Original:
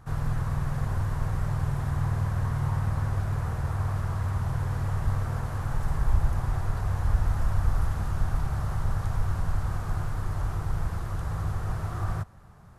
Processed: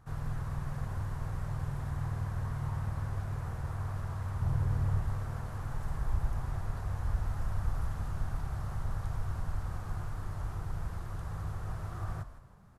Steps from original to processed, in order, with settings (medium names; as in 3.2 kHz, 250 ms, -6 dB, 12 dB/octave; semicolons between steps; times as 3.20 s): 4.42–5.02 s: bass shelf 440 Hz +7 dB; on a send: frequency-shifting echo 160 ms, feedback 37%, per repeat -73 Hz, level -12.5 dB; on the sum: trim -8 dB